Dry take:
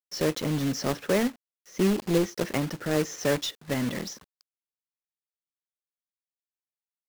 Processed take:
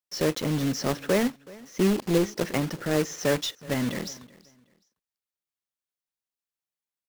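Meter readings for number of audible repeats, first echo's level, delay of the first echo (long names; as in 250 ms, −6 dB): 2, −22.0 dB, 375 ms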